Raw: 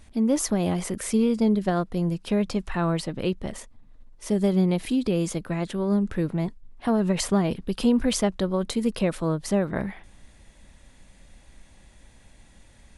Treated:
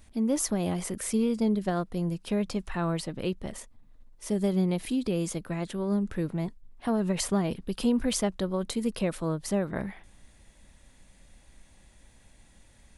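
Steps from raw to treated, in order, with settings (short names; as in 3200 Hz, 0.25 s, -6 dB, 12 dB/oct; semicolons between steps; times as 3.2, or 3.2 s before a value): high shelf 10000 Hz +8 dB; gain -4.5 dB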